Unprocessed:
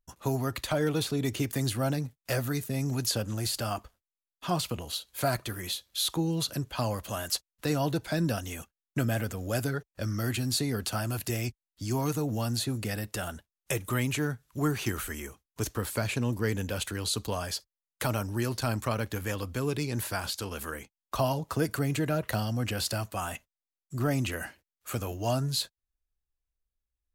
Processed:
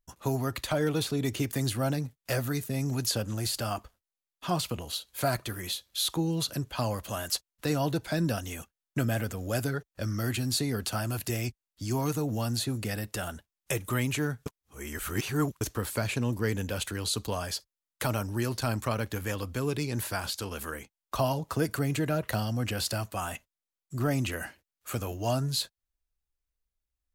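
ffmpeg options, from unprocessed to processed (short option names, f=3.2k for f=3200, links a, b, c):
-filter_complex "[0:a]asplit=3[a][b][c];[a]atrim=end=14.462[d];[b]atrim=start=14.458:end=15.612,asetpts=PTS-STARTPTS,areverse[e];[c]atrim=start=15.608[f];[d][e]acrossfade=d=0.004:c1=hsin:c2=hsin[g];[g][f]acrossfade=d=0.004:c1=hsin:c2=hsin"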